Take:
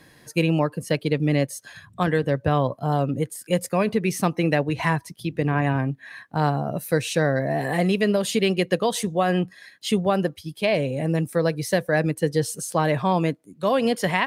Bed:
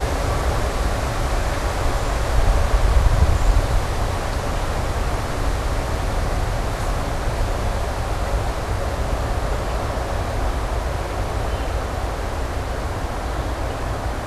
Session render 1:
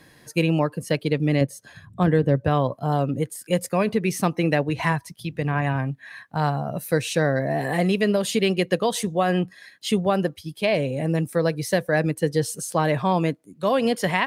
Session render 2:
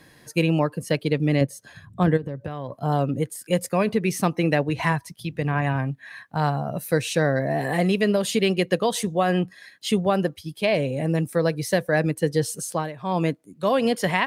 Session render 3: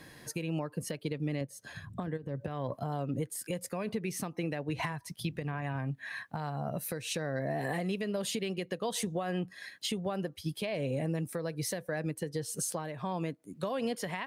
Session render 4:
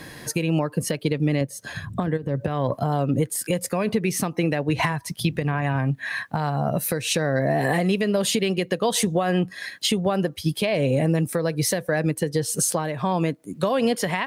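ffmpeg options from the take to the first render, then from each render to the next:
-filter_complex "[0:a]asettb=1/sr,asplit=3[a][b][c];[a]atrim=end=1.414[d];[b]atrim=start=1.41:end=2.45,asetpts=PTS-STARTPTS,afade=t=in:d=0.004:c=qsin,afade=t=out:st=1.036:d=0.004:c=qsin,tiltshelf=f=680:g=5.5[e];[c]atrim=start=2.446[f];[d][e]acrossfade=d=0.004:c1=hsin:c2=qsin[g];[g][f]acrossfade=d=0.004:c1=qsin:c2=hsin,asettb=1/sr,asplit=3[h][i][j];[h]atrim=end=4.924[k];[i]atrim=start=4.92:end=6.77,asetpts=PTS-STARTPTS,afade=t=in:d=0.004:c=qsin,afade=t=out:st=1.846:d=0.004:c=qsin,equalizer=f=340:w=1.5:g=-6.5[l];[j]atrim=start=6.766[m];[k][l]acrossfade=d=0.004:c1=hsin:c2=qsin[n];[n][m]acrossfade=d=0.004:c1=qsin:c2=hsin"
-filter_complex "[0:a]asplit=3[a][b][c];[a]afade=t=out:st=2.16:d=0.02[d];[b]acompressor=threshold=-26dB:ratio=12:attack=3.2:release=140:knee=1:detection=peak,afade=t=in:st=2.16:d=0.02,afade=t=out:st=2.8:d=0.02[e];[c]afade=t=in:st=2.8:d=0.02[f];[d][e][f]amix=inputs=3:normalize=0,asplit=3[g][h][i];[g]atrim=end=12.93,asetpts=PTS-STARTPTS,afade=t=out:st=12.68:d=0.25:silence=0.141254[j];[h]atrim=start=12.93:end=12.97,asetpts=PTS-STARTPTS,volume=-17dB[k];[i]atrim=start=12.97,asetpts=PTS-STARTPTS,afade=t=in:d=0.25:silence=0.141254[l];[j][k][l]concat=n=3:v=0:a=1"
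-af "acompressor=threshold=-28dB:ratio=10,alimiter=limit=-23.5dB:level=0:latency=1:release=194"
-af "volume=12dB"

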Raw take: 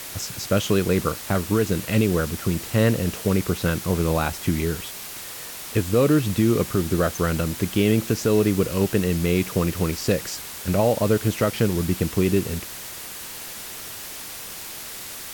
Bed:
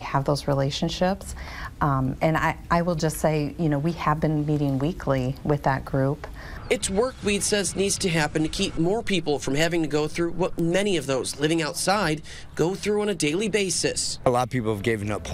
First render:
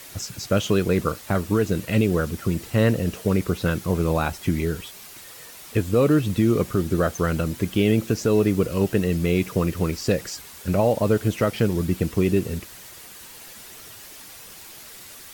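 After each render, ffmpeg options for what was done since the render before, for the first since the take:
-af "afftdn=nr=8:nf=-36"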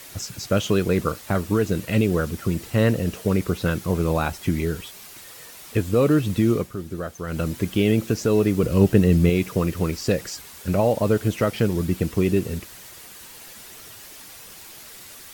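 -filter_complex "[0:a]asettb=1/sr,asplit=3[a][b][c];[a]atrim=end=8.634[d];[b]atrim=start=8.63:end=9.3,asetpts=PTS-STARTPTS,afade=t=in:d=0.004:c=qsin,afade=t=out:st=0.666:d=0.004:c=qsin,lowshelf=f=360:g=8[e];[c]atrim=start=9.296[f];[d][e]acrossfade=d=0.004:c1=hsin:c2=qsin[g];[g][f]acrossfade=d=0.004:c1=qsin:c2=hsin,asplit=3[h][i][j];[h]atrim=end=6.69,asetpts=PTS-STARTPTS,afade=t=out:st=6.52:d=0.17:silence=0.354813[k];[i]atrim=start=6.69:end=7.26,asetpts=PTS-STARTPTS,volume=-9dB[l];[j]atrim=start=7.26,asetpts=PTS-STARTPTS,afade=t=in:d=0.17:silence=0.354813[m];[k][l][m]concat=n=3:v=0:a=1"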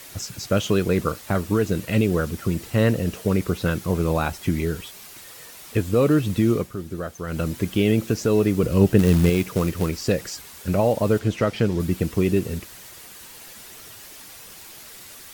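-filter_complex "[0:a]asettb=1/sr,asplit=3[a][b][c];[a]atrim=end=8.994[d];[b]atrim=start=8.99:end=9.89,asetpts=PTS-STARTPTS,afade=t=in:d=0.004:c=qsin,afade=t=out:st=0.896:d=0.004:c=qsin,acrusher=bits=4:mode=log:mix=0:aa=0.000001[e];[c]atrim=start=9.886[f];[d][e]acrossfade=d=0.004:c1=hsin:c2=qsin[g];[g][f]acrossfade=d=0.004:c1=qsin:c2=hsin,asettb=1/sr,asplit=3[h][i][j];[h]atrim=end=11.194[k];[i]atrim=start=11.19:end=11.8,asetpts=PTS-STARTPTS,afade=t=in:d=0.004:c=qsin,afade=t=out:st=0.606:d=0.004:c=qsin,acrossover=split=7500[l][m];[m]acompressor=threshold=-54dB:ratio=4:attack=1:release=60[n];[l][n]amix=inputs=2:normalize=0[o];[j]atrim=start=11.796[p];[k][o]acrossfade=d=0.004:c1=hsin:c2=qsin[q];[q][p]acrossfade=d=0.004:c1=qsin:c2=hsin"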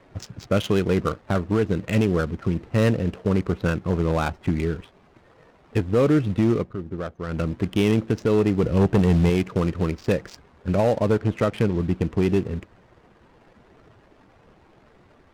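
-af "asoftclip=type=hard:threshold=-12.5dB,adynamicsmooth=sensitivity=5.5:basefreq=650"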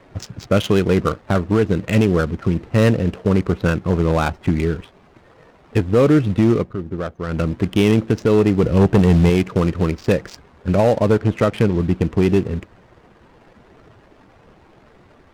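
-af "volume=5dB"

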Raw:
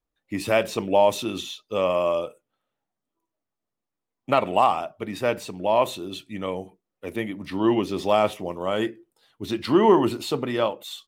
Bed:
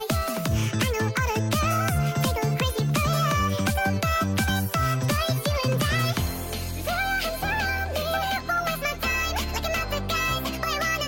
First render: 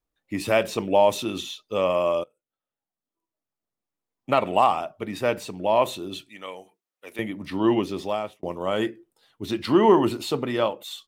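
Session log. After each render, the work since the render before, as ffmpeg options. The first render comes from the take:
-filter_complex "[0:a]asettb=1/sr,asplit=3[a][b][c];[a]atrim=end=6.294[d];[b]atrim=start=6.29:end=7.19,asetpts=PTS-STARTPTS,afade=t=in:d=0.004:c=qsin,afade=t=out:st=0.896:d=0.004:c=qsin,highpass=f=1.4k:p=1[e];[c]atrim=start=7.186[f];[d][e]acrossfade=d=0.004:c1=hsin:c2=qsin[g];[g][f]acrossfade=d=0.004:c1=qsin:c2=hsin,asplit=3[h][i][j];[h]atrim=end=2.24,asetpts=PTS-STARTPTS,afade=t=out:st=2.236:d=0.004:c=hsin:silence=0.0630957[k];[i]atrim=start=2.24:end=8.43,asetpts=PTS-STARTPTS,afade=t=in:d=2.27:silence=0.0630957,afade=t=out:st=5.54:d=0.65[l];[j]atrim=start=8.43,asetpts=PTS-STARTPTS,afade=t=in:d=0.004:c=hsin[m];[k][l][m]concat=n=3:v=0:a=1"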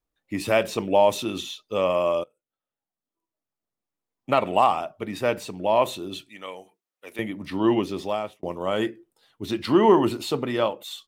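-af anull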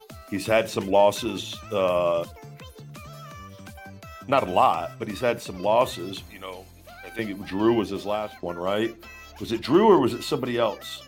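-filter_complex "[1:a]volume=-18.5dB[a];[0:a][a]amix=inputs=2:normalize=0"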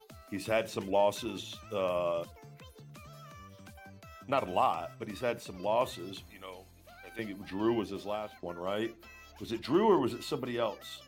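-af "volume=-9dB"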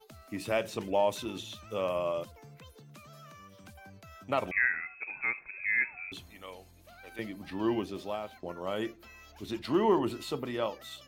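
-filter_complex "[0:a]asettb=1/sr,asplit=3[a][b][c];[a]atrim=end=2.764[d];[b]atrim=start=2.76:end=3.64,asetpts=PTS-STARTPTS,afade=t=in:d=0.004:c=qsin,afade=t=out:st=0.876:d=0.004:c=qsin,highpass=130[e];[c]atrim=start=3.636[f];[d][e]acrossfade=d=0.004:c1=hsin:c2=qsin[g];[g][f]acrossfade=d=0.004:c1=qsin:c2=hsin,asettb=1/sr,asplit=3[h][i][j];[h]atrim=end=4.514[k];[i]atrim=start=4.51:end=6.12,asetpts=PTS-STARTPTS,afade=t=in:d=0.004:c=qsin,afade=t=out:st=1.606:d=0.004:c=qsin,lowpass=f=2.3k:t=q:w=0.5098,lowpass=f=2.3k:t=q:w=0.6013,lowpass=f=2.3k:t=q:w=0.9,lowpass=f=2.3k:t=q:w=2.563,afreqshift=-2700[l];[j]atrim=start=6.116[m];[k][l]acrossfade=d=0.004:c1=hsin:c2=qsin[n];[n][m]acrossfade=d=0.004:c1=qsin:c2=hsin"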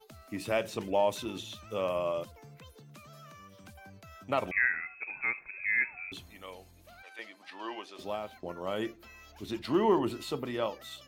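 -filter_complex "[0:a]asettb=1/sr,asplit=3[a][b][c];[a]atrim=end=7.024[d];[b]atrim=start=7.02:end=7.99,asetpts=PTS-STARTPTS,afade=t=in:d=0.004:c=qsin,afade=t=out:st=0.966:d=0.004:c=qsin,highpass=750,lowpass=7.8k[e];[c]atrim=start=7.986[f];[d][e]acrossfade=d=0.004:c1=hsin:c2=qsin[g];[g][f]acrossfade=d=0.004:c1=qsin:c2=hsin"

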